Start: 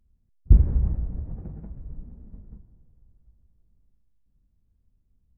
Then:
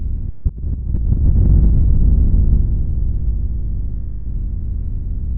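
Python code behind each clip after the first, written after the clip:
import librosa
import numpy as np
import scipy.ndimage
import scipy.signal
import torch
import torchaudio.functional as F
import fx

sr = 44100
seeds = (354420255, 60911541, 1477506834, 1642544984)

y = fx.bin_compress(x, sr, power=0.4)
y = fx.low_shelf(y, sr, hz=370.0, db=5.0)
y = fx.over_compress(y, sr, threshold_db=-15.0, ratio=-0.5)
y = y * librosa.db_to_amplitude(3.5)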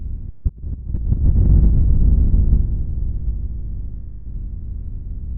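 y = fx.upward_expand(x, sr, threshold_db=-28.0, expansion=1.5)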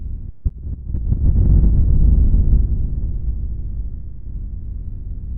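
y = x + 10.0 ** (-11.0 / 20.0) * np.pad(x, (int(503 * sr / 1000.0), 0))[:len(x)]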